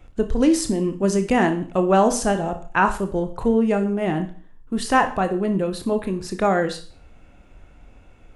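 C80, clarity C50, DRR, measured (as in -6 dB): 16.5 dB, 12.0 dB, 7.0 dB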